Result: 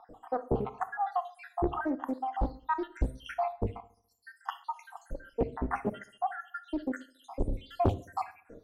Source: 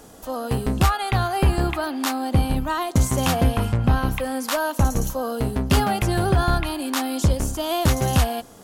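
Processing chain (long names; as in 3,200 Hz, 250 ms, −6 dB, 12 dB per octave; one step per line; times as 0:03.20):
time-frequency cells dropped at random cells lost 82%
spectral tilt −4 dB per octave
on a send: bucket-brigade delay 70 ms, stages 1,024, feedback 52%, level −22.5 dB
on the sum: reverb whose tail is shaped and stops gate 150 ms falling, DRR 10.5 dB
in parallel at −7.5 dB: soft clipping −7.5 dBFS, distortion −9 dB
on the sum: three-way crossover with the lows and the highs turned down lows −18 dB, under 320 Hz, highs −12 dB, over 2,200 Hz
highs frequency-modulated by the lows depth 0.96 ms
level −4.5 dB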